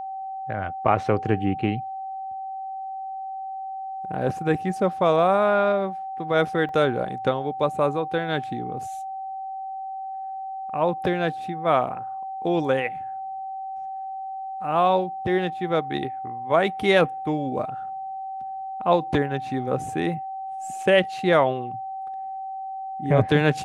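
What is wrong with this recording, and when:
whistle 770 Hz −30 dBFS
0:06.69: drop-out 2.2 ms

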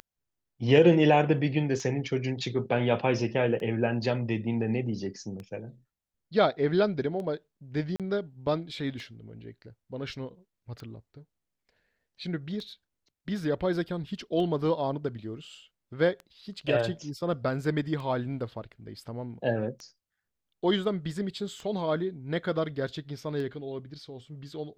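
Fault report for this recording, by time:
scratch tick 33 1/3 rpm −27 dBFS
0:07.96–0:08.00: drop-out 37 ms

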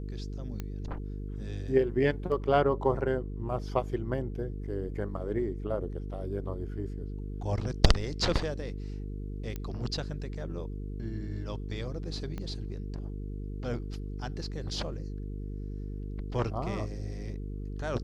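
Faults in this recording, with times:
mains buzz 50 Hz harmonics 9 −37 dBFS
0:00.60: click −22 dBFS
0:09.56: click −22 dBFS
0:12.38: click −25 dBFS

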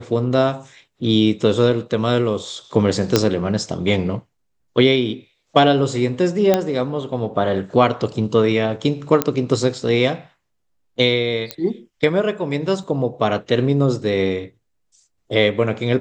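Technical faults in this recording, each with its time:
0:03.16: click 0 dBFS
0:06.54: click −2 dBFS
0:09.22: click −2 dBFS
0:11.51: click −8 dBFS
0:12.83: drop-out 3.4 ms

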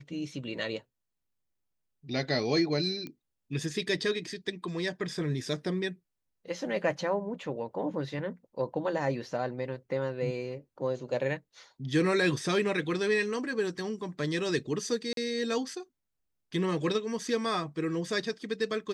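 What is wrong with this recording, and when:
0:03.07: click −26 dBFS
0:15.13–0:15.17: drop-out 42 ms

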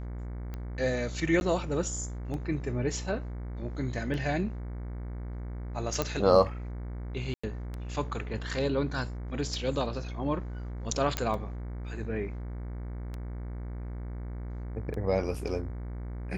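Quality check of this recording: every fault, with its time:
mains buzz 60 Hz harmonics 38 −37 dBFS
scratch tick 33 1/3 rpm −25 dBFS
0:01.40–0:01.41: drop-out 11 ms
0:06.02: click −13 dBFS
0:07.34–0:07.43: drop-out 95 ms
0:11.17: click −13 dBFS

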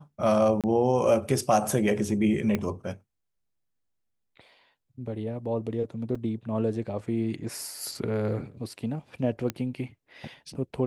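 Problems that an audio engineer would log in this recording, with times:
0:00.61–0:00.64: drop-out 27 ms
0:02.55: click −14 dBFS
0:06.15: drop-out 4.1 ms
0:09.50: click −15 dBFS

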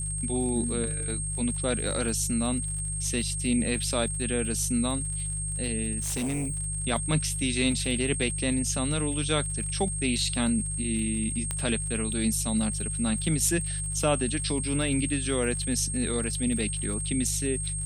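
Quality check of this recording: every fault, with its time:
surface crackle 83 per second −37 dBFS
mains hum 50 Hz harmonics 3 −34 dBFS
whistle 8,500 Hz −32 dBFS
0:06.00–0:06.56: clipping −26.5 dBFS
0:11.51: click −15 dBFS

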